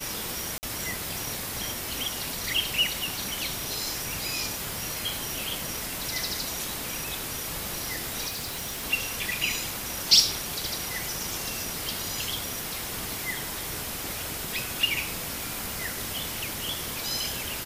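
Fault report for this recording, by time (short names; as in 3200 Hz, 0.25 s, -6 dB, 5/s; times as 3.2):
0.58–0.63 gap 49 ms
8.27–8.84 clipped -30 dBFS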